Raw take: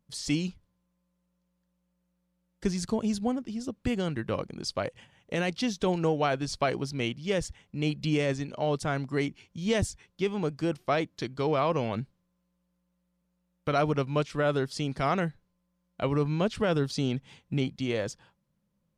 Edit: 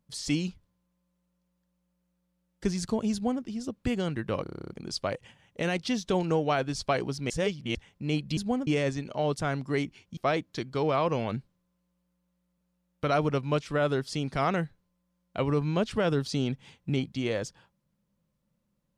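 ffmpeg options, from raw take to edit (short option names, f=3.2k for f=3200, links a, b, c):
-filter_complex "[0:a]asplit=15[a][b][c][d][e][f][g][h][i][j][k][l][m][n][o];[a]atrim=end=4.462[p];[b]atrim=start=4.428:end=4.462[q];[c]atrim=start=4.428:end=4.462[r];[d]atrim=start=4.428:end=4.462[s];[e]atrim=start=4.428:end=4.462[t];[f]atrim=start=4.428:end=4.462[u];[g]atrim=start=4.428:end=4.462[v];[h]atrim=start=4.428:end=4.462[w];[i]atrim=start=4.428:end=4.462[x];[j]atrim=start=4.428:end=7.032[y];[k]atrim=start=7.028:end=7.482,asetpts=PTS-STARTPTS,areverse[z];[l]atrim=start=7.478:end=8.102[aa];[m]atrim=start=3.128:end=3.432[ab];[n]atrim=start=8.098:end=9.602[ac];[o]atrim=start=10.808[ad];[p][q]acrossfade=d=0.004:c1=hsin:c2=hsin[ae];[ae][r]acrossfade=d=0.004:c1=hsin:c2=hsin[af];[af][s]acrossfade=d=0.004:c1=hsin:c2=hsin[ag];[ag][t]acrossfade=d=0.004:c1=hsin:c2=hsin[ah];[ah][u]acrossfade=d=0.004:c1=hsin:c2=hsin[ai];[ai][v]acrossfade=d=0.004:c1=hsin:c2=hsin[aj];[aj][w]acrossfade=d=0.004:c1=hsin:c2=hsin[ak];[ak][x]acrossfade=d=0.004:c1=hsin:c2=hsin[al];[al][y]acrossfade=d=0.004:c1=hsin:c2=hsin[am];[am][z]acrossfade=d=0.004:c1=hsin:c2=hsin[an];[an][aa]acrossfade=d=0.004:c1=hsin:c2=hsin[ao];[ao][ab]acrossfade=d=0.004:c1=hsin:c2=hsin[ap];[ap][ac]acrossfade=d=0.004:c1=hsin:c2=hsin[aq];[aq][ad]acrossfade=d=0.004:c1=hsin:c2=hsin"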